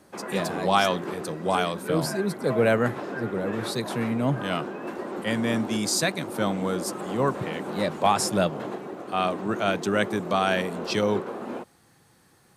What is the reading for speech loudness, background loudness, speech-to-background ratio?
-26.5 LUFS, -34.5 LUFS, 8.0 dB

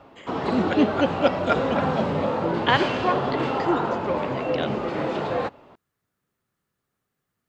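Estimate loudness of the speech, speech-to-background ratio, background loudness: -27.0 LUFS, -1.0 dB, -26.0 LUFS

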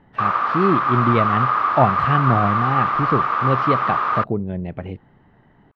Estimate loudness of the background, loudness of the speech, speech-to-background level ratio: -19.5 LUFS, -22.5 LUFS, -3.0 dB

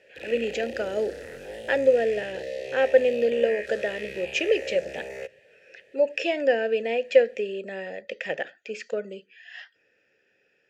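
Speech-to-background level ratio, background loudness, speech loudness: 11.0 dB, -36.5 LUFS, -25.5 LUFS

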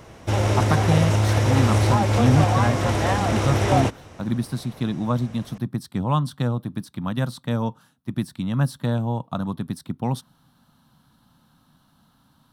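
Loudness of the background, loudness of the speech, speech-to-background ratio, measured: -21.0 LUFS, -26.0 LUFS, -5.0 dB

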